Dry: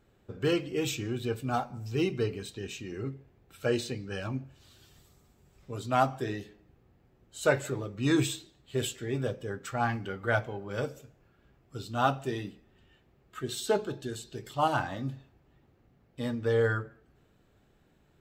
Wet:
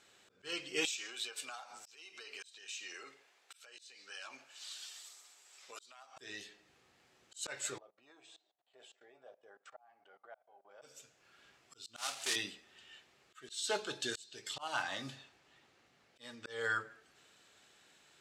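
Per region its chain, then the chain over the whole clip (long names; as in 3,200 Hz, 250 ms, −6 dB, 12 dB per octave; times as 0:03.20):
0:00.85–0:06.17: high-pass filter 610 Hz + downward compressor 10 to 1, threshold −47 dBFS
0:07.78–0:10.82: output level in coarse steps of 21 dB + resonant band-pass 700 Hz, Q 4.5
0:11.96–0:12.36: one scale factor per block 3 bits + high-pass filter 450 Hz 6 dB per octave + downward compressor 1.5 to 1, threshold −31 dBFS
0:13.40–0:16.35: one scale factor per block 7 bits + high-shelf EQ 8,300 Hz −6 dB
whole clip: meter weighting curve ITU-R 468; volume swells 586 ms; level +3 dB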